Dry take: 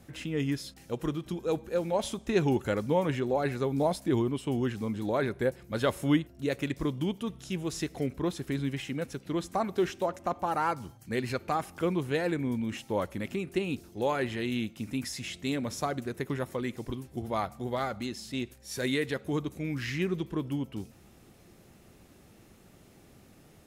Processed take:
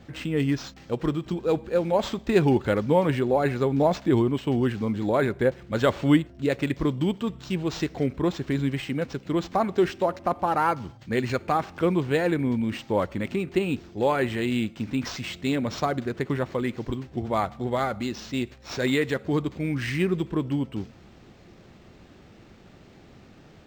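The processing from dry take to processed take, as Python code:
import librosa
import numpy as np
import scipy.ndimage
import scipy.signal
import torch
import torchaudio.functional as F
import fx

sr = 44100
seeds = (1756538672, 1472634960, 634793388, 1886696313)

y = np.interp(np.arange(len(x)), np.arange(len(x))[::4], x[::4])
y = y * librosa.db_to_amplitude(6.0)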